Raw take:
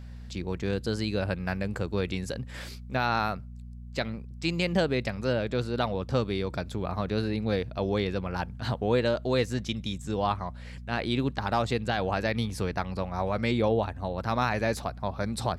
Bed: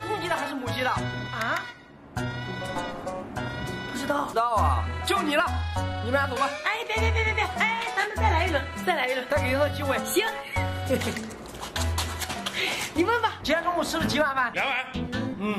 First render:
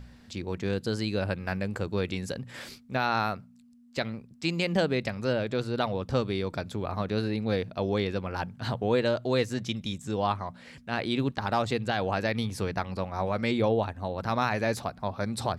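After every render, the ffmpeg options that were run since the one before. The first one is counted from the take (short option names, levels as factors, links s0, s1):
-af "bandreject=f=60:t=h:w=4,bandreject=f=120:t=h:w=4,bandreject=f=180:t=h:w=4"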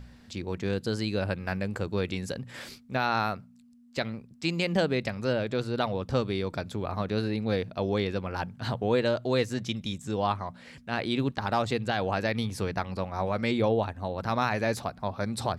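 -af anull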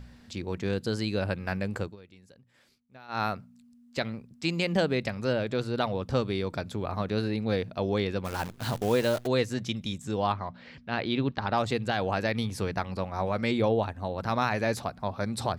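-filter_complex "[0:a]asplit=3[s0][s1][s2];[s0]afade=t=out:st=8.24:d=0.02[s3];[s1]acrusher=bits=7:dc=4:mix=0:aa=0.000001,afade=t=in:st=8.24:d=0.02,afade=t=out:st=9.26:d=0.02[s4];[s2]afade=t=in:st=9.26:d=0.02[s5];[s3][s4][s5]amix=inputs=3:normalize=0,asettb=1/sr,asplit=3[s6][s7][s8];[s6]atrim=end=10.324[s9];[s7]atrim=start=10.32:end=11.58,asetpts=PTS-STARTPTS,afade=t=in:d=0.004:c=qsin,afade=t=out:st=1.256:d=0.004:c=qsin,lowpass=f=5000:w=0.5412,lowpass=f=5000:w=1.3066[s10];[s8]atrim=start=11.576[s11];[s9][s10]acrossfade=d=0.004:c1=hsin:c2=qsin[s12];[s12][s11]acrossfade=d=0.004:c1=qsin:c2=hsin,asplit=3[s13][s14][s15];[s13]atrim=end=1.96,asetpts=PTS-STARTPTS,afade=t=out:st=1.81:d=0.15:silence=0.0794328[s16];[s14]atrim=start=1.96:end=3.08,asetpts=PTS-STARTPTS,volume=0.0794[s17];[s15]atrim=start=3.08,asetpts=PTS-STARTPTS,afade=t=in:d=0.15:silence=0.0794328[s18];[s16][s17][s18]concat=n=3:v=0:a=1"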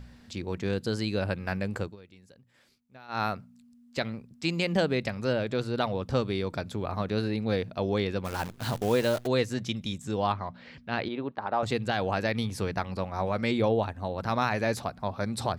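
-filter_complex "[0:a]asettb=1/sr,asplit=3[s0][s1][s2];[s0]atrim=end=11.084[s3];[s1]atrim=start=11.08:end=11.63,asetpts=PTS-STARTPTS,afade=t=in:d=0.004:c=qsin,afade=t=out:st=0.546:d=0.004:c=qsin,bandpass=f=700:t=q:w=0.77[s4];[s2]atrim=start=11.626[s5];[s3][s4]acrossfade=d=0.004:c1=hsin:c2=qsin[s6];[s6][s5]acrossfade=d=0.004:c1=qsin:c2=hsin"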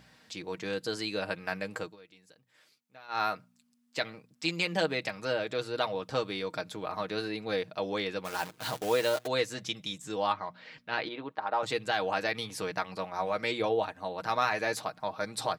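-af "highpass=f=600:p=1,aecho=1:1:6.4:0.55"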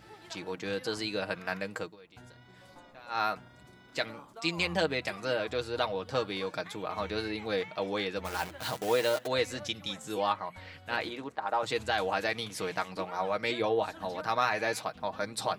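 -filter_complex "[1:a]volume=0.0708[s0];[0:a][s0]amix=inputs=2:normalize=0"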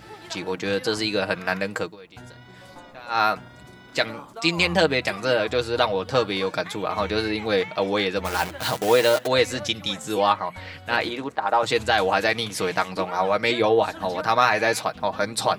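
-af "volume=2.99"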